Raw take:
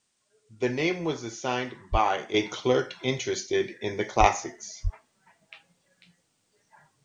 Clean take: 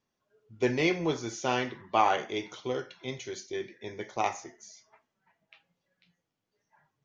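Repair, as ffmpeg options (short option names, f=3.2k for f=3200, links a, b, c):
-filter_complex "[0:a]asplit=3[a][b][c];[a]afade=t=out:st=1.91:d=0.02[d];[b]highpass=f=140:w=0.5412,highpass=f=140:w=1.3066,afade=t=in:st=1.91:d=0.02,afade=t=out:st=2.03:d=0.02[e];[c]afade=t=in:st=2.03:d=0.02[f];[d][e][f]amix=inputs=3:normalize=0,asplit=3[g][h][i];[g]afade=t=out:st=4.19:d=0.02[j];[h]highpass=f=140:w=0.5412,highpass=f=140:w=1.3066,afade=t=in:st=4.19:d=0.02,afade=t=out:st=4.31:d=0.02[k];[i]afade=t=in:st=4.31:d=0.02[l];[j][k][l]amix=inputs=3:normalize=0,asplit=3[m][n][o];[m]afade=t=out:st=4.83:d=0.02[p];[n]highpass=f=140:w=0.5412,highpass=f=140:w=1.3066,afade=t=in:st=4.83:d=0.02,afade=t=out:st=4.95:d=0.02[q];[o]afade=t=in:st=4.95:d=0.02[r];[p][q][r]amix=inputs=3:normalize=0,agate=range=-21dB:threshold=-63dB,asetnsamples=n=441:p=0,asendcmd='2.34 volume volume -9.5dB',volume=0dB"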